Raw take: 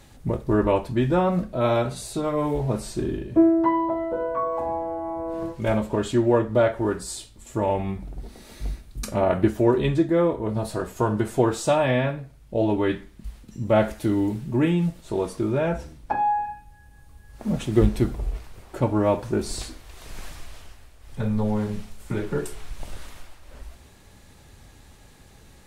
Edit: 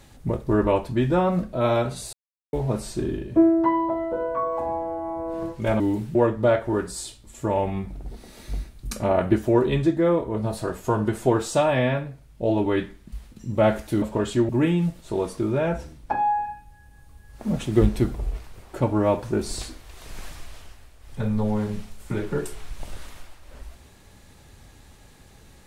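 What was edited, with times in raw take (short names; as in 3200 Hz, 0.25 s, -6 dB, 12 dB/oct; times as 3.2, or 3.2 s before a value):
2.13–2.53 mute
5.8–6.27 swap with 14.14–14.49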